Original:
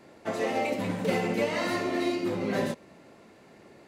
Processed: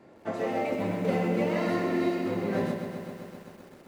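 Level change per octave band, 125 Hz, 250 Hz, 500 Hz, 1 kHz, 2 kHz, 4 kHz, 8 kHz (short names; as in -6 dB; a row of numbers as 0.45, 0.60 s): +3.0 dB, +1.5 dB, +0.5 dB, -1.0 dB, -3.0 dB, -6.5 dB, n/a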